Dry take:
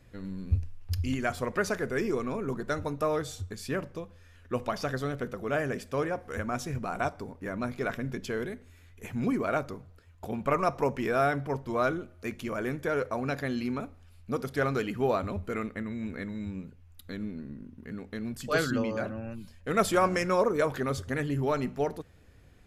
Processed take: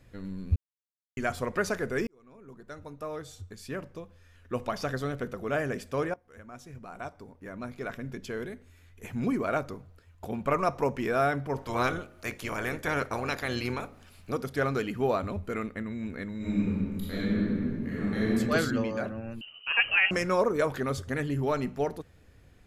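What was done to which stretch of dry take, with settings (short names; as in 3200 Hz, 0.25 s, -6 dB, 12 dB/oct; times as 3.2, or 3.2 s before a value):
0.56–1.17 mute
2.07–4.87 fade in
6.14–9.32 fade in, from -20.5 dB
11.56–14.32 spectral limiter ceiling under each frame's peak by 16 dB
16.37–18.29 reverb throw, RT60 2.1 s, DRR -10 dB
19.41–20.11 inverted band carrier 3000 Hz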